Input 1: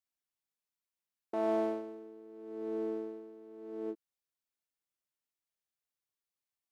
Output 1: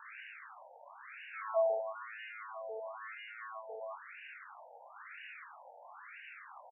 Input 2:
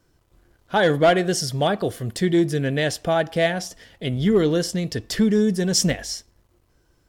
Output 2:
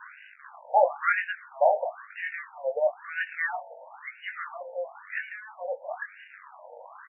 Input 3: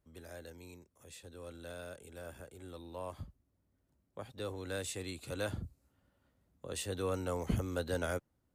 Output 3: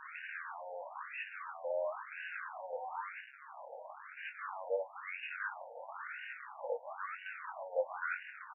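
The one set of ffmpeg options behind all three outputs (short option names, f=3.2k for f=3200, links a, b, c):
-filter_complex "[0:a]aeval=exprs='val(0)+0.5*0.0299*sgn(val(0))':c=same,asplit=2[a][b];[b]adelay=21,volume=-4.5dB[c];[a][c]amix=inputs=2:normalize=0,afftfilt=real='re*between(b*sr/1024,650*pow(2100/650,0.5+0.5*sin(2*PI*1*pts/sr))/1.41,650*pow(2100/650,0.5+0.5*sin(2*PI*1*pts/sr))*1.41)':imag='im*between(b*sr/1024,650*pow(2100/650,0.5+0.5*sin(2*PI*1*pts/sr))/1.41,650*pow(2100/650,0.5+0.5*sin(2*PI*1*pts/sr))*1.41)':win_size=1024:overlap=0.75"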